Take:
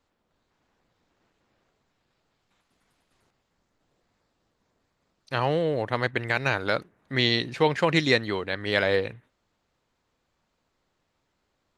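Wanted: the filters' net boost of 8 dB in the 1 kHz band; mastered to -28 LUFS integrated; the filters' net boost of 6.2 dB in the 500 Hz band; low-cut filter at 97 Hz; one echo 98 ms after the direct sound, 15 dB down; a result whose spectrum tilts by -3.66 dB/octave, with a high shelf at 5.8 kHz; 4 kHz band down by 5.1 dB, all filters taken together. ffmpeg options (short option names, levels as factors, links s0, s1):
-af "highpass=97,equalizer=f=500:t=o:g=5,equalizer=f=1000:t=o:g=8.5,equalizer=f=4000:t=o:g=-8.5,highshelf=f=5800:g=5.5,aecho=1:1:98:0.178,volume=0.473"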